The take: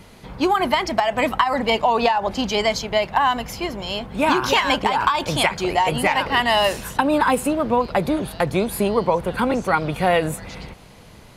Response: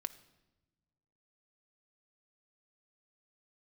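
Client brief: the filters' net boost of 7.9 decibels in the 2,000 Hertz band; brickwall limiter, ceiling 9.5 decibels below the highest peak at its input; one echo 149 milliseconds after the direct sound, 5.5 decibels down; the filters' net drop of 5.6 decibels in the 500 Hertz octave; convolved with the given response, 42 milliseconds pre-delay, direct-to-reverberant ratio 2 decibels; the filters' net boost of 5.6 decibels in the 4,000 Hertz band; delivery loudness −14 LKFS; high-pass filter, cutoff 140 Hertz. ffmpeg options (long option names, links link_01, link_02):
-filter_complex "[0:a]highpass=140,equalizer=frequency=500:width_type=o:gain=-8,equalizer=frequency=2000:width_type=o:gain=9,equalizer=frequency=4000:width_type=o:gain=3.5,alimiter=limit=-8.5dB:level=0:latency=1,aecho=1:1:149:0.531,asplit=2[link_01][link_02];[1:a]atrim=start_sample=2205,adelay=42[link_03];[link_02][link_03]afir=irnorm=-1:irlink=0,volume=-0.5dB[link_04];[link_01][link_04]amix=inputs=2:normalize=0,volume=3dB"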